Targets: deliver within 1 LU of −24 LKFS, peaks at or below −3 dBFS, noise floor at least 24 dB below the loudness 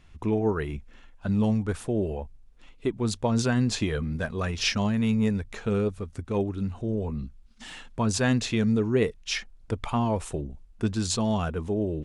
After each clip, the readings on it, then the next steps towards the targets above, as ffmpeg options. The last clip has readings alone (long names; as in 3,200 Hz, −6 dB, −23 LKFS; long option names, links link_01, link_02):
integrated loudness −27.5 LKFS; sample peak −12.5 dBFS; target loudness −24.0 LKFS
→ -af "volume=3.5dB"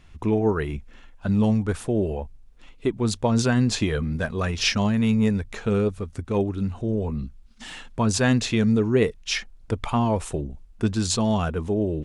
integrated loudness −24.0 LKFS; sample peak −9.0 dBFS; background noise floor −50 dBFS